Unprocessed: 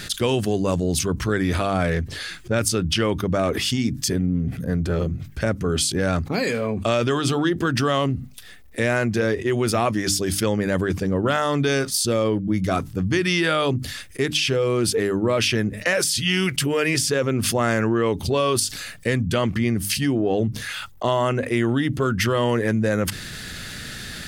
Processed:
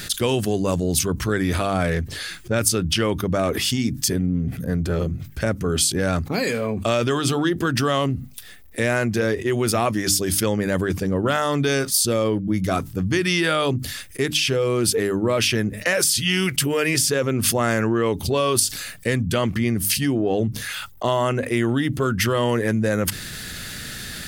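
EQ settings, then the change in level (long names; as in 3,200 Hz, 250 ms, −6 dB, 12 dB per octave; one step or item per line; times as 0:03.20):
high-shelf EQ 11,000 Hz +11.5 dB
0.0 dB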